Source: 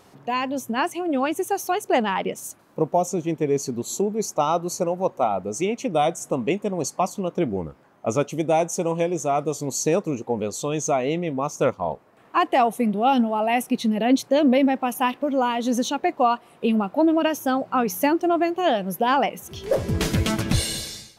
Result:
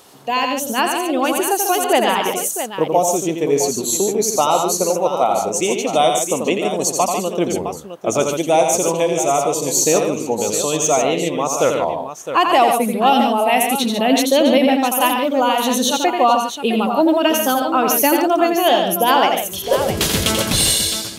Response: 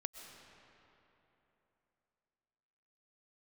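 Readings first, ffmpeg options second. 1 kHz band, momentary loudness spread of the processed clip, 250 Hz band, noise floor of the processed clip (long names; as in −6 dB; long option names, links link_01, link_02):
+7.0 dB, 6 LU, +3.0 dB, −29 dBFS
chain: -af "aexciter=amount=2.1:drive=7.3:freq=3000,bass=frequency=250:gain=-8,treble=frequency=4000:gain=-4,aecho=1:1:86|145|661:0.531|0.422|0.316,volume=5dB"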